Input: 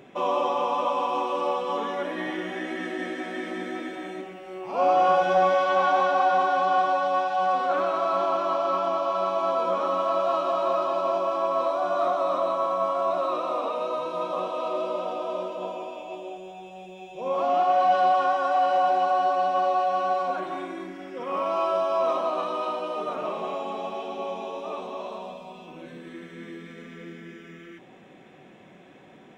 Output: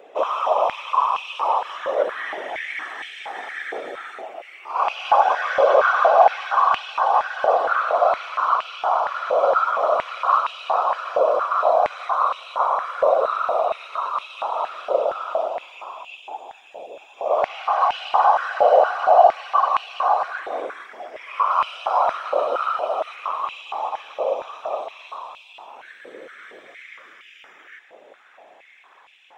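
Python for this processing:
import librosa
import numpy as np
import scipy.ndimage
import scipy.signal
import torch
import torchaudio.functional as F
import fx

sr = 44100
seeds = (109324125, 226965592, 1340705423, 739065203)

y = fx.whisperise(x, sr, seeds[0])
y = fx.filter_held_highpass(y, sr, hz=4.3, low_hz=540.0, high_hz=2700.0)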